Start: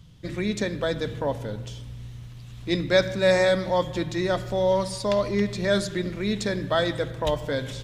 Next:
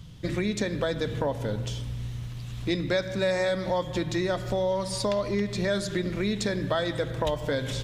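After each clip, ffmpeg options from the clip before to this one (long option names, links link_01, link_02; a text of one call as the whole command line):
ffmpeg -i in.wav -af "acompressor=threshold=-30dB:ratio=4,volume=5dB" out.wav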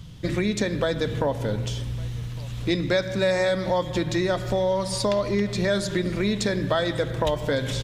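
ffmpeg -i in.wav -af "aecho=1:1:1157:0.0668,volume=3.5dB" out.wav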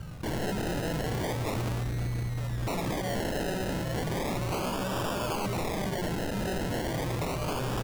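ffmpeg -i in.wav -af "acrusher=samples=30:mix=1:aa=0.000001:lfo=1:lforange=18:lforate=0.35,aeval=exprs='0.0447*(abs(mod(val(0)/0.0447+3,4)-2)-1)':channel_layout=same,volume=1dB" out.wav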